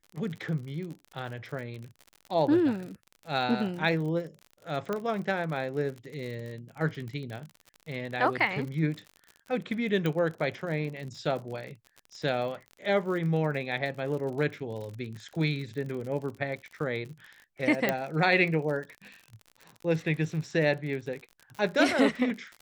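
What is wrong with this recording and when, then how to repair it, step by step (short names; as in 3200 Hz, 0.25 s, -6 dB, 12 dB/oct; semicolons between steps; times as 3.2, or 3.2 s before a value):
crackle 56/s -37 dBFS
4.93 pop -18 dBFS
10.06 pop -17 dBFS
17.89 pop -11 dBFS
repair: de-click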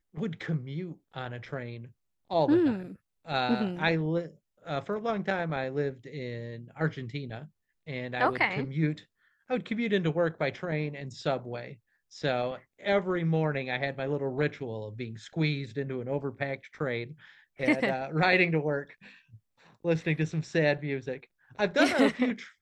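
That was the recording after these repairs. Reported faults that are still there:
4.93 pop
17.89 pop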